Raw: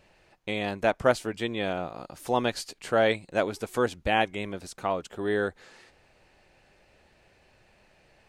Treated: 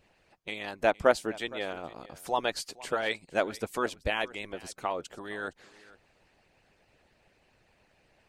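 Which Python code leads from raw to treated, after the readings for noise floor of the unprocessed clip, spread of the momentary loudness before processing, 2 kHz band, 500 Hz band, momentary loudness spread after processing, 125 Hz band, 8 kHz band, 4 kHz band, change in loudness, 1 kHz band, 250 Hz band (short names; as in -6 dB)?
-62 dBFS, 11 LU, -2.5 dB, -3.5 dB, 14 LU, -9.0 dB, -1.0 dB, -2.0 dB, -3.5 dB, -3.5 dB, -7.0 dB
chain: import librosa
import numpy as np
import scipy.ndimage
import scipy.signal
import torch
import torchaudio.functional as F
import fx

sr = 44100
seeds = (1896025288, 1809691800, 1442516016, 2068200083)

p1 = fx.hpss(x, sr, part='harmonic', gain_db=-17)
y = p1 + fx.echo_single(p1, sr, ms=464, db=-20.5, dry=0)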